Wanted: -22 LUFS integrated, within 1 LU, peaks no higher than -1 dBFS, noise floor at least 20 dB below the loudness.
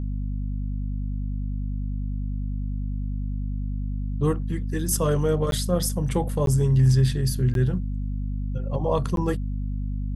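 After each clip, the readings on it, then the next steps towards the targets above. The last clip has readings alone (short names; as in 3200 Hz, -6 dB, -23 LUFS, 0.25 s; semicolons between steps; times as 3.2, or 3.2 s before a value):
dropouts 4; longest dropout 12 ms; hum 50 Hz; harmonics up to 250 Hz; hum level -25 dBFS; loudness -26.0 LUFS; peak -9.5 dBFS; loudness target -22.0 LUFS
-> interpolate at 5.51/6.46/7.54/9.16, 12 ms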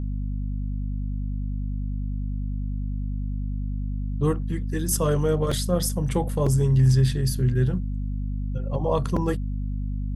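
dropouts 0; hum 50 Hz; harmonics up to 250 Hz; hum level -25 dBFS
-> de-hum 50 Hz, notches 5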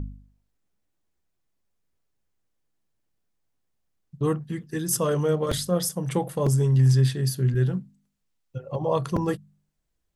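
hum none; loudness -24.5 LUFS; peak -11.0 dBFS; loudness target -22.0 LUFS
-> gain +2.5 dB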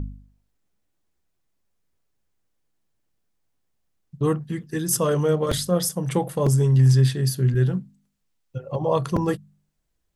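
loudness -22.0 LUFS; peak -8.5 dBFS; noise floor -74 dBFS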